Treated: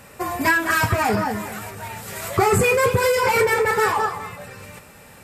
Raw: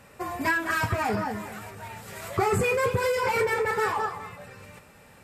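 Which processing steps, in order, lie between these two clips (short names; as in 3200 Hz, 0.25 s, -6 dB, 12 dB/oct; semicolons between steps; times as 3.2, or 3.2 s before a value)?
high shelf 6500 Hz +6.5 dB; gain +6.5 dB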